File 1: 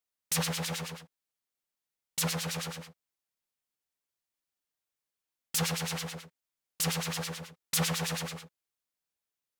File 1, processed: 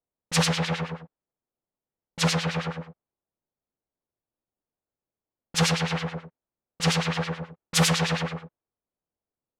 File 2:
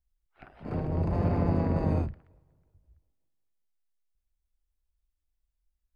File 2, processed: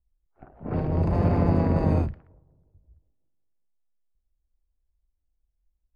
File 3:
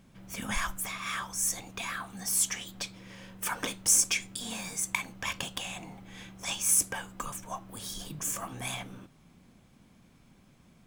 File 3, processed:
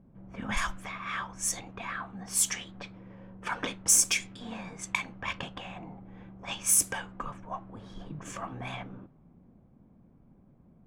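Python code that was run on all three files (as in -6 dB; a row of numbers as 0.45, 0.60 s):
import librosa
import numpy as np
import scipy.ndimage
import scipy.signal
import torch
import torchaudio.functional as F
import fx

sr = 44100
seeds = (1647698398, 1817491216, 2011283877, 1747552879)

y = fx.env_lowpass(x, sr, base_hz=650.0, full_db=-24.0)
y = librosa.util.normalize(y) * 10.0 ** (-9 / 20.0)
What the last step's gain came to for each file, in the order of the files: +9.0, +4.5, +1.5 dB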